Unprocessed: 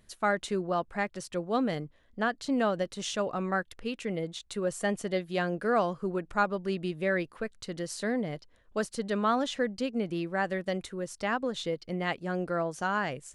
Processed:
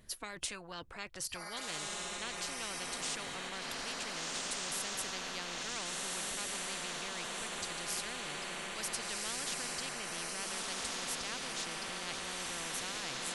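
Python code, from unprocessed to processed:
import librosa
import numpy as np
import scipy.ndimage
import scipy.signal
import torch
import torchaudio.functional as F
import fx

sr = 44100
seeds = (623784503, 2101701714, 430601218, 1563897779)

y = fx.noise_reduce_blind(x, sr, reduce_db=13)
y = fx.echo_diffused(y, sr, ms=1530, feedback_pct=50, wet_db=-6.5)
y = fx.spectral_comp(y, sr, ratio=10.0)
y = F.gain(torch.from_numpy(y), -6.5).numpy()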